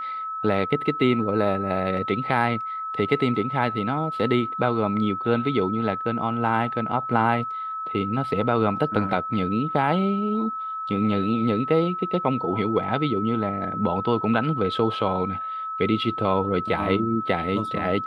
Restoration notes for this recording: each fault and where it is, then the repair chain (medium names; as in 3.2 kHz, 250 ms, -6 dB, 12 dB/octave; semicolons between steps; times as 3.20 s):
whine 1.3 kHz -28 dBFS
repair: band-stop 1.3 kHz, Q 30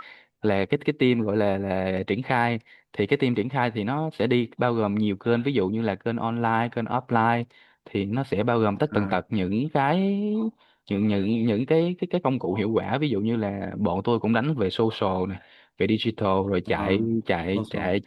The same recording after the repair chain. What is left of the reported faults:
nothing left